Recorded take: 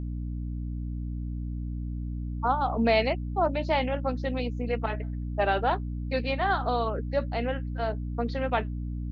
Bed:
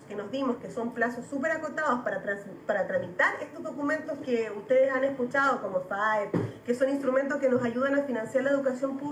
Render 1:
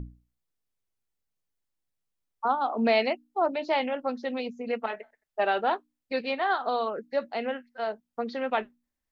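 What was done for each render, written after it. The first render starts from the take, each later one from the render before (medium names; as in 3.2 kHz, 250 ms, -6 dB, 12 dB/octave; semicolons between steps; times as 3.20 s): hum notches 60/120/180/240/300 Hz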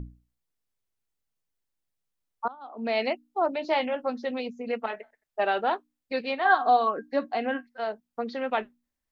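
2.48–3.09 s: fade in quadratic, from -20 dB; 3.63–4.31 s: doubling 13 ms -9 dB; 6.45–7.67 s: small resonant body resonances 290/740/1100/1600 Hz, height 13 dB, ringing for 100 ms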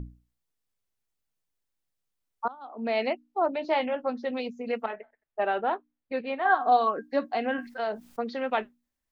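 2.65–4.33 s: low-pass 3.2 kHz 6 dB/octave; 4.86–6.72 s: distance through air 370 m; 7.58–8.21 s: level flattener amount 50%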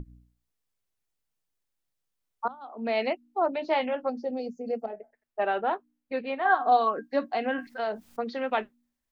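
4.09–5.13 s: time-frequency box 840–4300 Hz -16 dB; hum notches 60/120/180/240/300 Hz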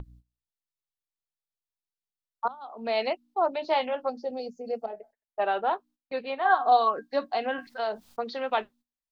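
gate -53 dBFS, range -15 dB; graphic EQ 250/1000/2000/4000 Hz -6/+3/-4/+6 dB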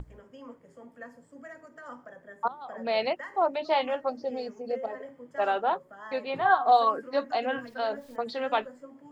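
add bed -17 dB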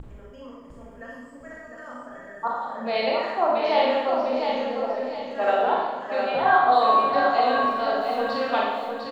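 on a send: feedback delay 703 ms, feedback 35%, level -5.5 dB; on the sum: Schroeder reverb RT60 1.1 s, combs from 28 ms, DRR -3.5 dB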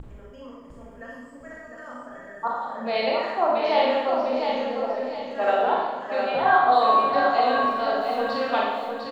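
no audible change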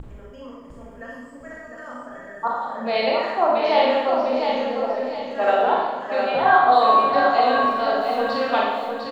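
trim +3 dB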